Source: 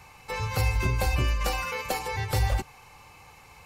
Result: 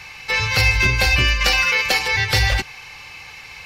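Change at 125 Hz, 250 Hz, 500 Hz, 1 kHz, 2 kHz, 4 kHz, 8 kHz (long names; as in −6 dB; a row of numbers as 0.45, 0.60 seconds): +5.0, +5.0, +5.0, +5.5, +17.0, +17.5, +10.5 decibels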